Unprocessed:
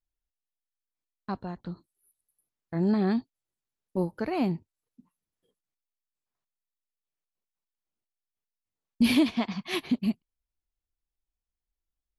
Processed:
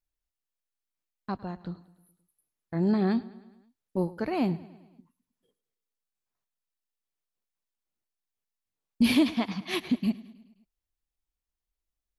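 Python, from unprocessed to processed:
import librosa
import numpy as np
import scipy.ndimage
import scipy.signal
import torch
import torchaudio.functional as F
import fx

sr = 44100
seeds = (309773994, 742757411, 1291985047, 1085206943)

y = fx.echo_feedback(x, sr, ms=105, feedback_pct=58, wet_db=-19.5)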